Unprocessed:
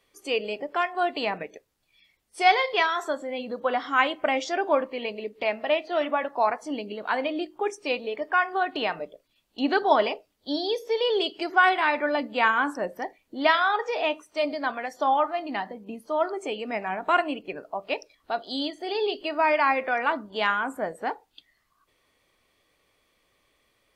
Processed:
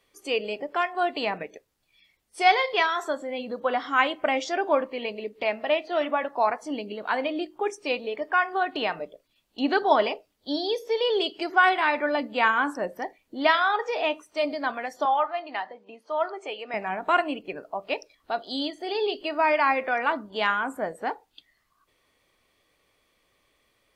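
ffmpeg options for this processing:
ffmpeg -i in.wav -filter_complex "[0:a]asettb=1/sr,asplit=3[link_01][link_02][link_03];[link_01]atrim=end=15.054[link_04];[link_02]atrim=start=15.05:end=16.74,asetpts=PTS-STARTPTS,afade=type=in:duration=0.004:curve=qsin,afade=type=out:start_time=1.686:duration=0.004:curve=qsin,highpass=530,lowpass=4800[link_05];[link_03]atrim=start=16.736[link_06];[link_04][link_05]acrossfade=duration=0.004:curve1=hsin:curve2=qsin[link_07];[link_07][link_06]acrossfade=duration=0.004:curve1=qsin:curve2=hsin" out.wav

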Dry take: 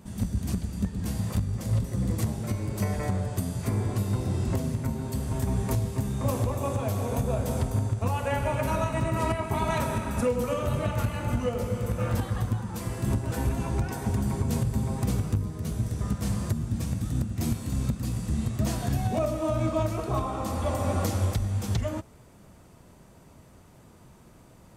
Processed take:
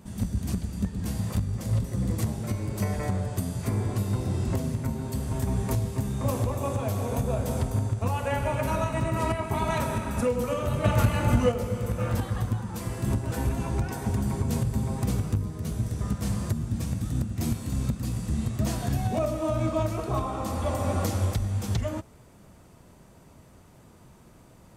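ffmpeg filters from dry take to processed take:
ffmpeg -i in.wav -filter_complex "[0:a]asettb=1/sr,asplit=3[link_01][link_02][link_03];[link_01]atrim=end=10.844[link_04];[link_02]atrim=start=10.84:end=11.52,asetpts=PTS-STARTPTS,afade=type=in:duration=0.004:curve=qsin,afade=type=out:start_time=0.676:duration=0.004:curve=qsin,acontrast=46[link_05];[link_03]atrim=start=11.516[link_06];[link_04][link_05]acrossfade=duration=0.004:curve1=hsin:curve2=qsin[link_07];[link_07][link_06]acrossfade=duration=0.004:curve1=qsin:curve2=hsin" out.wav

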